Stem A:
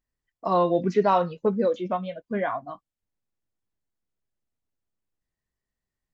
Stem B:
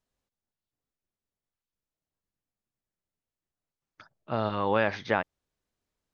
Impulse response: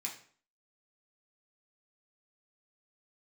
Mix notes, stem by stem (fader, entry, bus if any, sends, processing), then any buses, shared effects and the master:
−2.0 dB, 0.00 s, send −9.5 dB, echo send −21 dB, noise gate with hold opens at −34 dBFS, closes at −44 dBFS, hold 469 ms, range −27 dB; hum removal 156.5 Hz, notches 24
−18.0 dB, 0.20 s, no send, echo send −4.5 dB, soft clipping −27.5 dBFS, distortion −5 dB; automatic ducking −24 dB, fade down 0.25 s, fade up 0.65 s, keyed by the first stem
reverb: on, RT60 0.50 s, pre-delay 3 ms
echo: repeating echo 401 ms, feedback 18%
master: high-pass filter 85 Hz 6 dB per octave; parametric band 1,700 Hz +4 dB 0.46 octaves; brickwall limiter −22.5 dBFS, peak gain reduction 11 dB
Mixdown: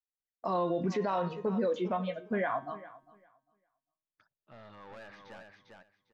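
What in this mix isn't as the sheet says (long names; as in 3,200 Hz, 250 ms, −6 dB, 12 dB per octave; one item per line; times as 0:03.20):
stem A: send −9.5 dB → −16 dB
master: missing high-pass filter 85 Hz 6 dB per octave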